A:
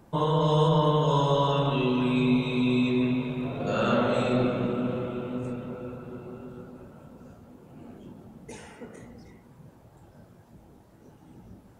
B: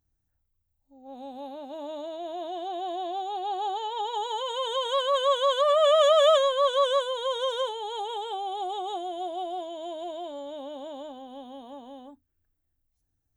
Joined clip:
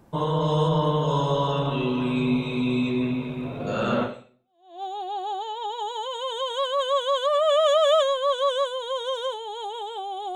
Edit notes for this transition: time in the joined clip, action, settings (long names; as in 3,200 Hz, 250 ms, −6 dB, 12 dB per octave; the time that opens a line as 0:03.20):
A
0:04.43: continue with B from 0:02.78, crossfade 0.80 s exponential